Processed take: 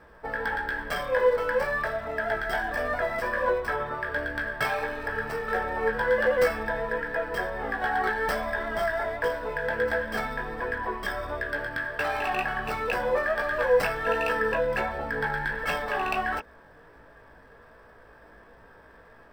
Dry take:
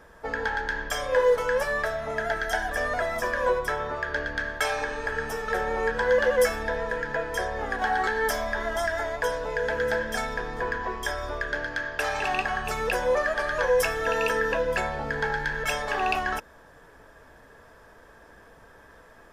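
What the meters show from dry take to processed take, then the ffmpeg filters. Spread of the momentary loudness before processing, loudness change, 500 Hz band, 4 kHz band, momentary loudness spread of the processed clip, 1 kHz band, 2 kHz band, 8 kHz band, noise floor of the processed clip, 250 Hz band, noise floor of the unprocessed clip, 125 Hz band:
7 LU, -1.0 dB, -1.0 dB, -4.0 dB, 7 LU, -0.5 dB, -0.5 dB, -10.5 dB, -53 dBFS, 0.0 dB, -52 dBFS, -1.0 dB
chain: -filter_complex "[0:a]acrossover=split=3900[s0][s1];[s0]flanger=delay=16.5:depth=3.1:speed=1.4[s2];[s1]acrusher=samples=13:mix=1:aa=0.000001[s3];[s2][s3]amix=inputs=2:normalize=0,volume=1.33"

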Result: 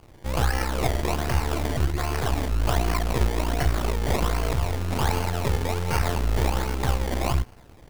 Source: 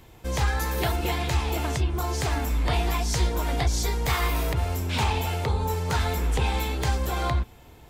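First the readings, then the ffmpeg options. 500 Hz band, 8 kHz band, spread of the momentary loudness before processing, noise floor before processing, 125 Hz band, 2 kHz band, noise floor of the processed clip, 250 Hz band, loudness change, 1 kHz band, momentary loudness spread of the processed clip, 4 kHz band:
+2.0 dB, -2.0 dB, 2 LU, -50 dBFS, +0.5 dB, -0.5 dB, -49 dBFS, +2.5 dB, +0.5 dB, 0.0 dB, 2 LU, -2.0 dB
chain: -af "aeval=exprs='if(lt(val(0),0),0.251*val(0),val(0))':c=same,acrusher=samples=23:mix=1:aa=0.000001:lfo=1:lforange=23:lforate=1.3,volume=1.58"

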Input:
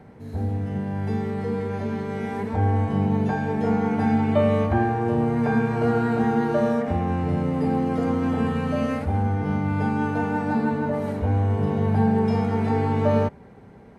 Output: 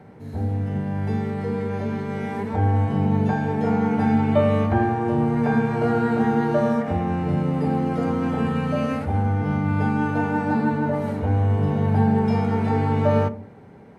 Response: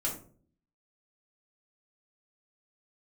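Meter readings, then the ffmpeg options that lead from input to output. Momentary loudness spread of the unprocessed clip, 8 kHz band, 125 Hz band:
7 LU, no reading, +2.0 dB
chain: -filter_complex "[0:a]highpass=74,asplit=2[s0][s1];[1:a]atrim=start_sample=2205,lowpass=4700[s2];[s1][s2]afir=irnorm=-1:irlink=0,volume=0.211[s3];[s0][s3]amix=inputs=2:normalize=0"

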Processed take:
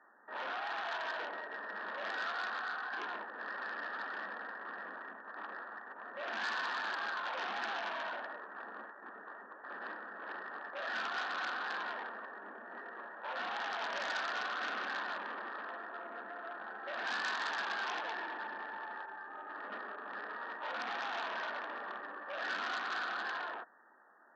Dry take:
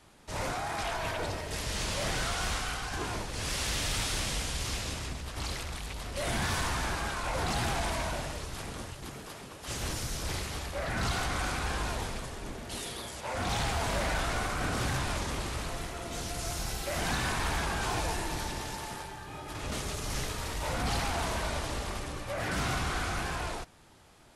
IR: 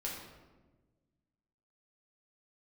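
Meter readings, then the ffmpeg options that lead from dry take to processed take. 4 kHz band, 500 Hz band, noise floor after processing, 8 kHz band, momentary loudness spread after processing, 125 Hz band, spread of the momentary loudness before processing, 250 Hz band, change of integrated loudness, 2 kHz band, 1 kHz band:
-9.5 dB, -8.5 dB, -53 dBFS, -24.5 dB, 10 LU, under -35 dB, 9 LU, -15.5 dB, -6.0 dB, -1.0 dB, -3.5 dB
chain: -af "afftfilt=real='re*between(b*sr/4096,190,1900)':imag='im*between(b*sr/4096,190,1900)':win_size=4096:overlap=0.75,aeval=exprs='0.075*(cos(1*acos(clip(val(0)/0.075,-1,1)))-cos(1*PI/2))+0.00596*(cos(2*acos(clip(val(0)/0.075,-1,1)))-cos(2*PI/2))+0.00211*(cos(4*acos(clip(val(0)/0.075,-1,1)))-cos(4*PI/2))+0.015*(cos(5*acos(clip(val(0)/0.075,-1,1)))-cos(5*PI/2))+0.000944*(cos(8*acos(clip(val(0)/0.075,-1,1)))-cos(8*PI/2))':c=same,aderivative,volume=2.99"

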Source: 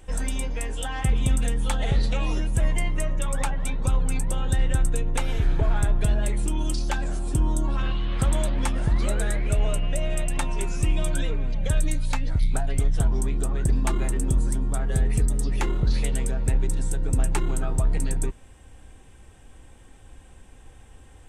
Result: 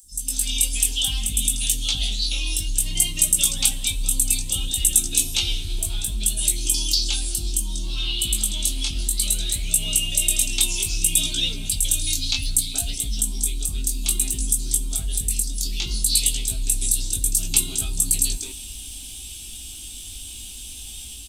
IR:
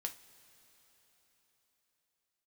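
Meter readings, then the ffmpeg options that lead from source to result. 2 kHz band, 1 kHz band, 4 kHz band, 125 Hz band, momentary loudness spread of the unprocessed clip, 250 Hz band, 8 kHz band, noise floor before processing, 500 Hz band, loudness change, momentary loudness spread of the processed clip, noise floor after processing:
+1.0 dB, under -10 dB, +16.5 dB, -6.5 dB, 4 LU, -6.5 dB, +16.0 dB, -49 dBFS, -13.0 dB, +5.5 dB, 15 LU, -37 dBFS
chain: -filter_complex "[0:a]flanger=delay=17.5:depth=5.2:speed=0.62,areverse,acompressor=threshold=0.0178:ratio=5,areverse,bandreject=f=480:w=12,acrossover=split=270|6000[s0][s1][s2];[s0]adelay=30[s3];[s1]adelay=190[s4];[s3][s4][s2]amix=inputs=3:normalize=0,asplit=2[s5][s6];[1:a]atrim=start_sample=2205[s7];[s6][s7]afir=irnorm=-1:irlink=0,volume=1.26[s8];[s5][s8]amix=inputs=2:normalize=0,dynaudnorm=f=110:g=7:m=2.82,equalizer=f=125:t=o:w=1:g=-10,equalizer=f=250:t=o:w=1:g=6,equalizer=f=500:t=o:w=1:g=-11,equalizer=f=1000:t=o:w=1:g=-10,equalizer=f=2000:t=o:w=1:g=-7,equalizer=f=8000:t=o:w=1:g=-11,aexciter=amount=14:drive=8.5:freq=2800,volume=0.596"

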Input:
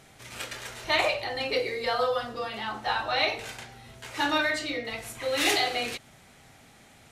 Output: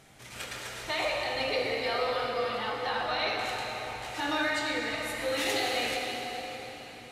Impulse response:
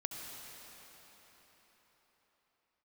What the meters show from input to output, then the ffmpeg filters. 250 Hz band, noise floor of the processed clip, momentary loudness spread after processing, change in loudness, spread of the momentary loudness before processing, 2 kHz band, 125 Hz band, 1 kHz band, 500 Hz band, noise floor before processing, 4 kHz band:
-1.5 dB, -47 dBFS, 10 LU, -3.0 dB, 15 LU, -2.0 dB, -1.0 dB, -1.5 dB, -1.5 dB, -55 dBFS, -2.5 dB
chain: -filter_complex "[0:a]alimiter=limit=0.1:level=0:latency=1[s0];[1:a]atrim=start_sample=2205[s1];[s0][s1]afir=irnorm=-1:irlink=0"

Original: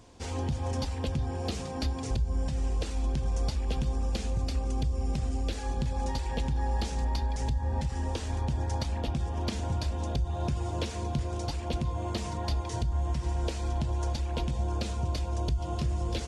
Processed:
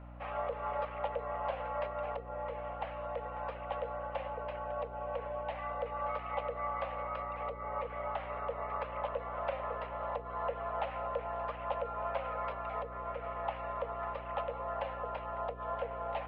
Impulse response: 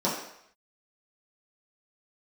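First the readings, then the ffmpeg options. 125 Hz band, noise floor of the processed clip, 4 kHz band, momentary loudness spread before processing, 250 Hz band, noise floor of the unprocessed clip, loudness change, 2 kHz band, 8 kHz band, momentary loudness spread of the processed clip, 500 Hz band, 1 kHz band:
-19.0 dB, -44 dBFS, -15.0 dB, 2 LU, -17.0 dB, -36 dBFS, -6.5 dB, 0.0 dB, under -35 dB, 3 LU, +2.0 dB, +3.0 dB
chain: -af "highpass=f=180:t=q:w=0.5412,highpass=f=180:t=q:w=1.307,lowpass=f=2300:t=q:w=0.5176,lowpass=f=2300:t=q:w=0.7071,lowpass=f=2300:t=q:w=1.932,afreqshift=330,aeval=exprs='val(0)+0.00398*(sin(2*PI*60*n/s)+sin(2*PI*2*60*n/s)/2+sin(2*PI*3*60*n/s)/3+sin(2*PI*4*60*n/s)/4+sin(2*PI*5*60*n/s)/5)':c=same"

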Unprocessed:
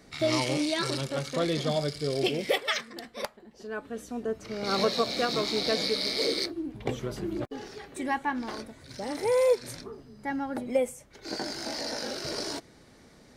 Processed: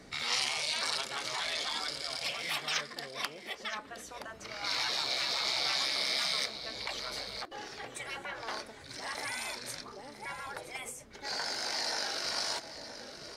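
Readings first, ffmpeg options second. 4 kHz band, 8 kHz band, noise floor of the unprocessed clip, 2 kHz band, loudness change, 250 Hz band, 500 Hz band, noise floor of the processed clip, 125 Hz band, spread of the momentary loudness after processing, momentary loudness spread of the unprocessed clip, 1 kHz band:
+0.5 dB, +1.5 dB, -56 dBFS, 0.0 dB, -4.0 dB, -19.0 dB, -16.0 dB, -51 dBFS, -18.0 dB, 14 LU, 13 LU, -4.5 dB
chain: -filter_complex "[0:a]highshelf=f=12000:g=-9.5,aecho=1:1:970:0.224,afftfilt=real='re*lt(hypot(re,im),0.0794)':imag='im*lt(hypot(re,im),0.0794)':win_size=1024:overlap=0.75,acrossover=split=560[s0][s1];[s0]acompressor=threshold=0.00158:ratio=6[s2];[s2][s1]amix=inputs=2:normalize=0,volume=1.41"

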